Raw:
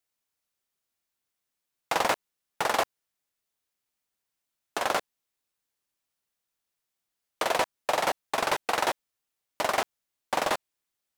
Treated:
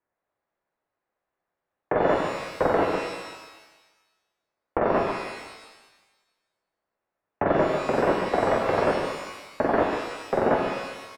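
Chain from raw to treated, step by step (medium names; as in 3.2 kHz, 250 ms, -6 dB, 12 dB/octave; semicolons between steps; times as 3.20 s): on a send: delay 148 ms -14.5 dB; on the sum: mistuned SSB -360 Hz 390–2300 Hz; peak limiter -21 dBFS, peak gain reduction 9.5 dB; peaking EQ 600 Hz +9 dB 1.3 oct; pitch-shifted reverb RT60 1.2 s, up +12 st, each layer -8 dB, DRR 2 dB; trim +3.5 dB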